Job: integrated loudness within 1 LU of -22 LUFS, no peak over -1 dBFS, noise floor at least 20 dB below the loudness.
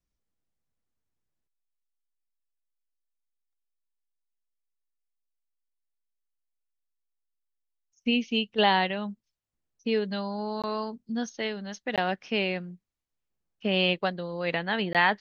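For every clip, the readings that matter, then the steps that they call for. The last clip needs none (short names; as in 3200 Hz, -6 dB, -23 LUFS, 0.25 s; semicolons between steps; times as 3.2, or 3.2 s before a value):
dropouts 3; longest dropout 17 ms; loudness -28.5 LUFS; peak -9.5 dBFS; loudness target -22.0 LUFS
-> interpolate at 10.62/11.96/14.93, 17 ms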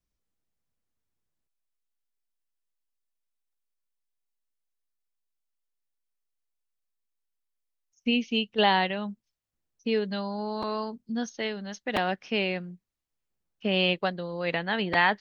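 dropouts 0; loudness -28.0 LUFS; peak -9.5 dBFS; loudness target -22.0 LUFS
-> gain +6 dB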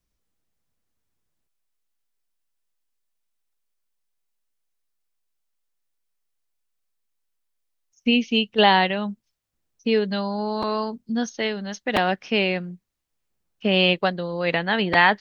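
loudness -22.0 LUFS; peak -3.5 dBFS; noise floor -76 dBFS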